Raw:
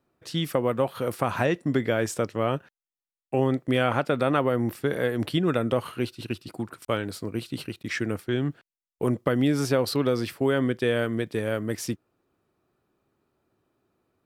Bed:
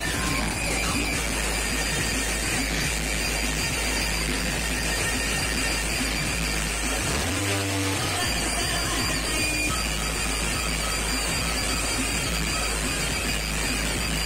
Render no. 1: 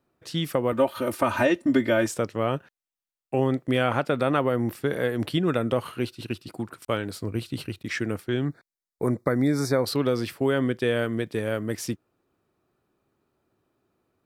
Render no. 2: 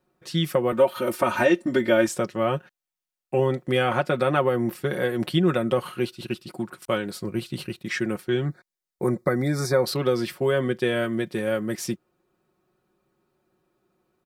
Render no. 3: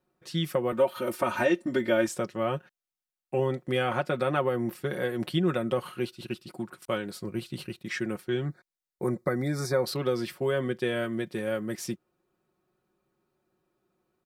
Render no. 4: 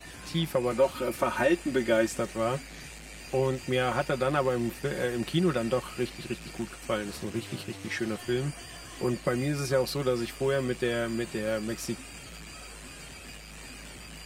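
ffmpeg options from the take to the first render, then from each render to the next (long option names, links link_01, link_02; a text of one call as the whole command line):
ffmpeg -i in.wav -filter_complex "[0:a]asettb=1/sr,asplit=3[link_01][link_02][link_03];[link_01]atrim=end=0.724[link_04];[link_02]atrim=start=0.72:end=2.08,asetpts=PTS-STARTPTS,afade=type=in:duration=0.004:curve=qsin,afade=type=out:start_time=1.356:duration=0.004:curve=qsin,aecho=1:1:3.3:0.97,atrim=end_sample=59976[link_05];[link_03]atrim=start=2.076[link_06];[link_04][link_05]acrossfade=duration=0.004:curve1=hsin:curve2=qsin[link_07];[link_07][link_06]acrossfade=duration=0.004:curve1=qsin:curve2=hsin,asettb=1/sr,asplit=3[link_08][link_09][link_10];[link_08]atrim=end=7.214[link_11];[link_09]atrim=start=7.21:end=7.85,asetpts=PTS-STARTPTS,afade=type=in:duration=0.004:curve=qsin,afade=type=out:start_time=0.636:duration=0.004:curve=qsin,equalizer=frequency=90:width_type=o:width=0.77:gain=8[link_12];[link_10]atrim=start=7.846[link_13];[link_11][link_12]acrossfade=duration=0.004:curve1=hsin:curve2=qsin[link_14];[link_14][link_13]acrossfade=duration=0.004:curve1=qsin:curve2=hsin,asettb=1/sr,asplit=3[link_15][link_16][link_17];[link_15]atrim=end=8.454[link_18];[link_16]atrim=start=8.45:end=9.86,asetpts=PTS-STARTPTS,afade=type=in:duration=0.004:curve=qsin,afade=type=out:start_time=1.406:duration=0.004:curve=qsin,asuperstop=centerf=2900:order=12:qfactor=2.4[link_19];[link_17]atrim=start=9.856[link_20];[link_18][link_19]acrossfade=duration=0.004:curve1=hsin:curve2=qsin[link_21];[link_21][link_20]acrossfade=duration=0.004:curve1=qsin:curve2=hsin" out.wav
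ffmpeg -i in.wav -af "aecho=1:1:5.5:0.68" out.wav
ffmpeg -i in.wav -af "volume=-5dB" out.wav
ffmpeg -i in.wav -i bed.wav -filter_complex "[1:a]volume=-18.5dB[link_01];[0:a][link_01]amix=inputs=2:normalize=0" out.wav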